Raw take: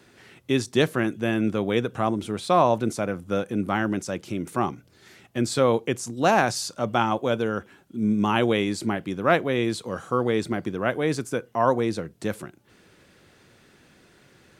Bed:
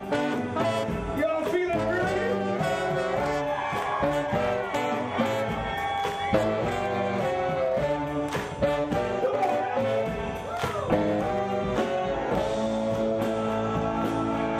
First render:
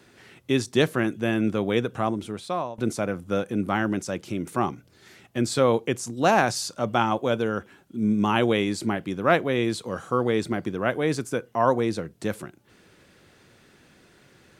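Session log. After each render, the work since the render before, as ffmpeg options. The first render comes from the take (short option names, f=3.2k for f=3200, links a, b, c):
-filter_complex "[0:a]asplit=2[a][b];[a]atrim=end=2.78,asetpts=PTS-STARTPTS,afade=t=out:st=1.67:d=1.11:c=qsin:silence=0.0794328[c];[b]atrim=start=2.78,asetpts=PTS-STARTPTS,afade=t=in:d=0.004:c=hsin:silence=0.0794328[d];[c][d]concat=n=2:v=0:a=1"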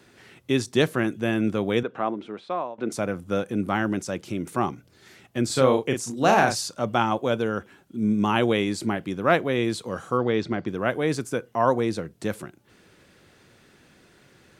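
-filter_complex "[0:a]asettb=1/sr,asplit=3[a][b][c];[a]atrim=end=1.834[d];[b]atrim=start=1.83:end=2.92,asetpts=PTS-STARTPTS,afade=t=in:d=0.004:c=qsin,afade=t=out:st=1.086:d=0.004:c=qsin,highpass=260,lowpass=2.7k[e];[c]atrim=start=2.916[f];[d][e]acrossfade=d=0.004:c1=hsin:c2=qsin[g];[g][f]acrossfade=d=0.004:c1=qsin:c2=hsin,asettb=1/sr,asplit=3[h][i][j];[h]atrim=end=5.464[k];[i]atrim=start=5.46:end=6.61,asetpts=PTS-STARTPTS,afade=t=in:d=0.004:c=qsin,afade=t=out:st=1.146:d=0.004:c=qsin,asplit=2[l][m];[m]adelay=38,volume=-5dB[n];[l][n]amix=inputs=2:normalize=0,atrim=end_sample=50715[o];[j]atrim=start=6.606[p];[k][o]acrossfade=d=0.004:c1=hsin:c2=qsin[q];[q][p]acrossfade=d=0.004:c1=qsin:c2=hsin,asplit=3[r][s][t];[r]afade=t=out:st=10.17:d=0.02[u];[s]lowpass=f=5.6k:w=0.5412,lowpass=f=5.6k:w=1.3066,afade=t=in:st=10.17:d=0.02,afade=t=out:st=10.67:d=0.02[v];[t]afade=t=in:st=10.67:d=0.02[w];[u][v][w]amix=inputs=3:normalize=0"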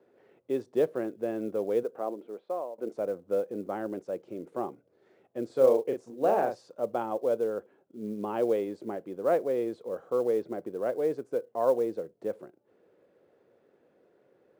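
-af "bandpass=f=500:t=q:w=2.7:csg=0,acrusher=bits=8:mode=log:mix=0:aa=0.000001"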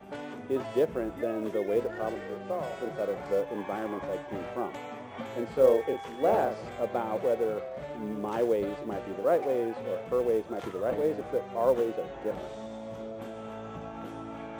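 -filter_complex "[1:a]volume=-13.5dB[a];[0:a][a]amix=inputs=2:normalize=0"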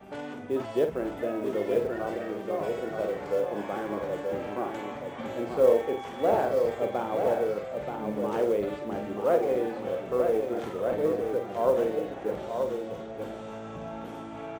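-filter_complex "[0:a]asplit=2[a][b];[b]adelay=48,volume=-8dB[c];[a][c]amix=inputs=2:normalize=0,aecho=1:1:929:0.531"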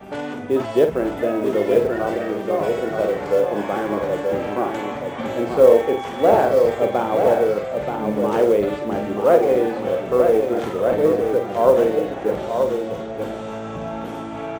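-af "volume=9.5dB,alimiter=limit=-2dB:level=0:latency=1"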